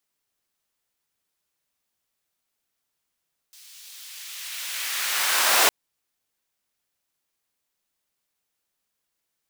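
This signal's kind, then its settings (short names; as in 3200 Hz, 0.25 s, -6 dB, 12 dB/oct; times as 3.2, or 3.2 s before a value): swept filtered noise pink, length 2.16 s highpass, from 4000 Hz, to 660 Hz, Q 0.99, linear, gain ramp +30.5 dB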